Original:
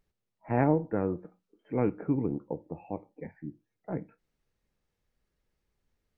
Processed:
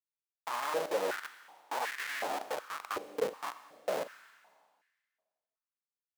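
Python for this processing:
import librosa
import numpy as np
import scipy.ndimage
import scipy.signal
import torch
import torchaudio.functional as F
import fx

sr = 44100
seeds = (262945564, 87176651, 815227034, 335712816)

y = fx.schmitt(x, sr, flips_db=-44.5)
y = fx.rev_schroeder(y, sr, rt60_s=1.7, comb_ms=30, drr_db=11.5)
y = fx.filter_held_highpass(y, sr, hz=2.7, low_hz=450.0, high_hz=1800.0)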